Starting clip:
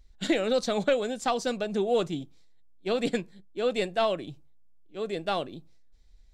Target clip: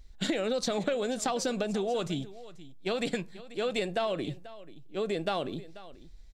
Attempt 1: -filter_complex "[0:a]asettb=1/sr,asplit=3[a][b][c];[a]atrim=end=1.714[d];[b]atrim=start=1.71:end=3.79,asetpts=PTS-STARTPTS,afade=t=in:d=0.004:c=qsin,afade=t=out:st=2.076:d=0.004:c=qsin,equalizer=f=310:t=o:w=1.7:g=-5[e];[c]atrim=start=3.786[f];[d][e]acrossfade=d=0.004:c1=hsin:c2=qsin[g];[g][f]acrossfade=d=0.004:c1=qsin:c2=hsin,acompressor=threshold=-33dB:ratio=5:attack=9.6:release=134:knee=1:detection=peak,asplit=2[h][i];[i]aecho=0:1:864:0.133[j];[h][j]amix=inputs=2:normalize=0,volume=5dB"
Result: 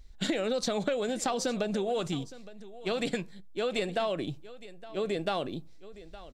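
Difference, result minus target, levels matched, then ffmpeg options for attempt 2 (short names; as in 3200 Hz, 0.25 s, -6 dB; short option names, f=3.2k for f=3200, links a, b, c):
echo 0.377 s late
-filter_complex "[0:a]asettb=1/sr,asplit=3[a][b][c];[a]atrim=end=1.714[d];[b]atrim=start=1.71:end=3.79,asetpts=PTS-STARTPTS,afade=t=in:d=0.004:c=qsin,afade=t=out:st=2.076:d=0.004:c=qsin,equalizer=f=310:t=o:w=1.7:g=-5[e];[c]atrim=start=3.786[f];[d][e]acrossfade=d=0.004:c1=hsin:c2=qsin[g];[g][f]acrossfade=d=0.004:c1=qsin:c2=hsin,acompressor=threshold=-33dB:ratio=5:attack=9.6:release=134:knee=1:detection=peak,asplit=2[h][i];[i]aecho=0:1:487:0.133[j];[h][j]amix=inputs=2:normalize=0,volume=5dB"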